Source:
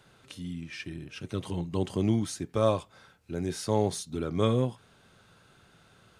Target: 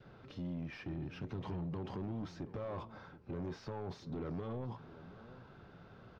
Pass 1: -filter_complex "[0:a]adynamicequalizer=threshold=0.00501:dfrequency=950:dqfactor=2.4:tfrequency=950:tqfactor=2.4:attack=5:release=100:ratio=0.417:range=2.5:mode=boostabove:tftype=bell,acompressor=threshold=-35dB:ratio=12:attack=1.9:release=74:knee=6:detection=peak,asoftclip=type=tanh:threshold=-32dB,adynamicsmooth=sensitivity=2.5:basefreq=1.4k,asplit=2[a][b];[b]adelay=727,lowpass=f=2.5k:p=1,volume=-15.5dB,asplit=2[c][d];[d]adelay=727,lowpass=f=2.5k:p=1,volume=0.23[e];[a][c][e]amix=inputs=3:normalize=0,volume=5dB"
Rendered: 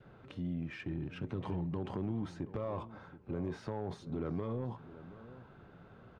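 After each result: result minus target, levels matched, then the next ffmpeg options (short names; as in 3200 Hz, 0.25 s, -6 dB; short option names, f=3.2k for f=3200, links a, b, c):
soft clip: distortion -11 dB; 4000 Hz band -3.0 dB
-filter_complex "[0:a]adynamicequalizer=threshold=0.00501:dfrequency=950:dqfactor=2.4:tfrequency=950:tqfactor=2.4:attack=5:release=100:ratio=0.417:range=2.5:mode=boostabove:tftype=bell,acompressor=threshold=-35dB:ratio=12:attack=1.9:release=74:knee=6:detection=peak,asoftclip=type=tanh:threshold=-40.5dB,adynamicsmooth=sensitivity=2.5:basefreq=1.4k,asplit=2[a][b];[b]adelay=727,lowpass=f=2.5k:p=1,volume=-15.5dB,asplit=2[c][d];[d]adelay=727,lowpass=f=2.5k:p=1,volume=0.23[e];[a][c][e]amix=inputs=3:normalize=0,volume=5dB"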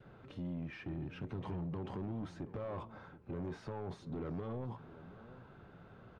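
4000 Hz band -3.0 dB
-filter_complex "[0:a]adynamicequalizer=threshold=0.00501:dfrequency=950:dqfactor=2.4:tfrequency=950:tqfactor=2.4:attack=5:release=100:ratio=0.417:range=2.5:mode=boostabove:tftype=bell,acompressor=threshold=-35dB:ratio=12:attack=1.9:release=74:knee=6:detection=peak,lowpass=f=5.4k:t=q:w=2.9,asoftclip=type=tanh:threshold=-40.5dB,adynamicsmooth=sensitivity=2.5:basefreq=1.4k,asplit=2[a][b];[b]adelay=727,lowpass=f=2.5k:p=1,volume=-15.5dB,asplit=2[c][d];[d]adelay=727,lowpass=f=2.5k:p=1,volume=0.23[e];[a][c][e]amix=inputs=3:normalize=0,volume=5dB"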